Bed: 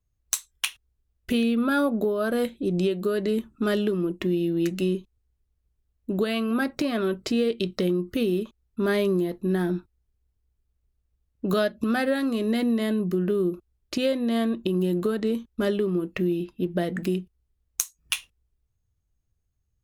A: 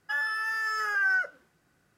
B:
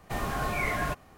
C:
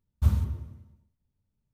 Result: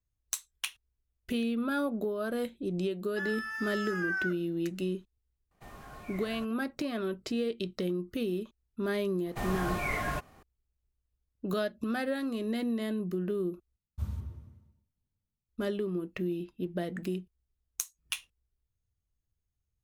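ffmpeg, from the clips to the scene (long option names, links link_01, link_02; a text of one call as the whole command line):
ffmpeg -i bed.wav -i cue0.wav -i cue1.wav -i cue2.wav -filter_complex "[2:a]asplit=2[link_01][link_02];[0:a]volume=-8dB[link_03];[1:a]equalizer=frequency=640:width=1.5:gain=-5.5[link_04];[3:a]dynaudnorm=framelen=100:gausssize=7:maxgain=9.5dB[link_05];[link_03]asplit=2[link_06][link_07];[link_06]atrim=end=13.764[link_08];[link_05]atrim=end=1.73,asetpts=PTS-STARTPTS,volume=-15.5dB[link_09];[link_07]atrim=start=15.486[link_10];[link_04]atrim=end=1.97,asetpts=PTS-STARTPTS,volume=-7dB,afade=type=in:duration=0.004:curve=hsin,afade=type=out:start_time=1.966:duration=0.004:curve=hsin,adelay=3070[link_11];[link_01]atrim=end=1.17,asetpts=PTS-STARTPTS,volume=-17.5dB,afade=type=in:duration=0.004:curve=hsin,afade=type=out:start_time=1.166:duration=0.004:curve=hsin,adelay=5510[link_12];[link_02]atrim=end=1.17,asetpts=PTS-STARTPTS,volume=-3dB,afade=type=in:duration=0.004:curve=hsin,afade=type=out:start_time=1.166:duration=0.004:curve=hsin,adelay=9260[link_13];[link_08][link_09]acrossfade=duration=0.004:curve1=hsin:curve2=hsin[link_14];[link_14][link_10]acrossfade=duration=0.004:curve1=hsin:curve2=hsin[link_15];[link_15][link_11][link_12][link_13]amix=inputs=4:normalize=0" out.wav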